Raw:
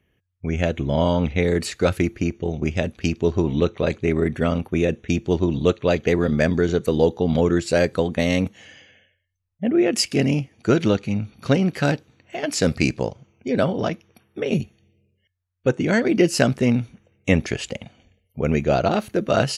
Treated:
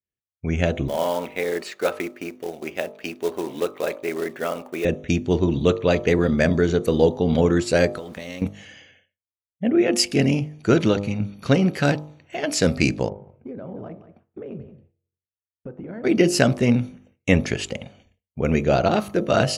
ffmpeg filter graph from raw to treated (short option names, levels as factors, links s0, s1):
-filter_complex "[0:a]asettb=1/sr,asplit=3[s0][s1][s2];[s0]atrim=end=0.884[s3];[s1]atrim=start=0.88:end=4.85,asetpts=PTS-STARTPTS,afade=t=in:d=0.004:c=qsin,afade=t=out:st=3.966:d=0.004:c=qsin,highpass=480,aemphasis=mode=reproduction:type=75kf,acrusher=bits=4:mode=log:mix=0:aa=0.000001[s4];[s2]atrim=start=4.846[s5];[s3][s4]acrossfade=d=0.004:c1=hsin:c2=qsin[s6];[s6][s5]acrossfade=d=0.004:c1=qsin:c2=hsin,asettb=1/sr,asplit=3[s7][s8][s9];[s7]atrim=end=7.974[s10];[s8]atrim=start=7.97:end=8.42,asetpts=PTS-STARTPTS,afade=t=in:d=0.004:c=qsin,afade=t=out:st=0.446:d=0.004:c=qsin,lowshelf=f=210:g=-10.5,acompressor=threshold=0.0251:ratio=5:attack=3.2:release=140:knee=1:detection=peak,aeval=exprs='val(0)*gte(abs(val(0)),0.00376)':c=same[s11];[s9]atrim=start=8.416[s12];[s10][s11]acrossfade=d=0.004:c1=hsin:c2=qsin[s13];[s13][s12]acrossfade=d=0.004:c1=qsin:c2=hsin,asettb=1/sr,asplit=3[s14][s15][s16];[s14]atrim=end=13.094[s17];[s15]atrim=start=13.09:end=16.04,asetpts=PTS-STARTPTS,afade=t=in:d=0.004:c=qsin,afade=t=out:st=2.946:d=0.004:c=qsin,lowpass=1100,acompressor=threshold=0.0282:ratio=16:attack=3.2:release=140:knee=1:detection=peak,aecho=1:1:177:0.237,atrim=end_sample=130095[s18];[s16]atrim=start=16.036[s19];[s17][s18]acrossfade=d=0.004:c1=hsin:c2=qsin[s20];[s20][s19]acrossfade=d=0.004:c1=qsin:c2=hsin,bandreject=f=50.38:t=h:w=4,bandreject=f=100.76:t=h:w=4,bandreject=f=151.14:t=h:w=4,bandreject=f=201.52:t=h:w=4,bandreject=f=251.9:t=h:w=4,bandreject=f=302.28:t=h:w=4,bandreject=f=352.66:t=h:w=4,bandreject=f=403.04:t=h:w=4,bandreject=f=453.42:t=h:w=4,bandreject=f=503.8:t=h:w=4,bandreject=f=554.18:t=h:w=4,bandreject=f=604.56:t=h:w=4,bandreject=f=654.94:t=h:w=4,bandreject=f=705.32:t=h:w=4,bandreject=f=755.7:t=h:w=4,bandreject=f=806.08:t=h:w=4,bandreject=f=856.46:t=h:w=4,bandreject=f=906.84:t=h:w=4,bandreject=f=957.22:t=h:w=4,bandreject=f=1007.6:t=h:w=4,bandreject=f=1057.98:t=h:w=4,bandreject=f=1108.36:t=h:w=4,bandreject=f=1158.74:t=h:w=4,bandreject=f=1209.12:t=h:w=4,bandreject=f=1259.5:t=h:w=4,bandreject=f=1309.88:t=h:w=4,agate=range=0.0224:threshold=0.00316:ratio=3:detection=peak,volume=1.12"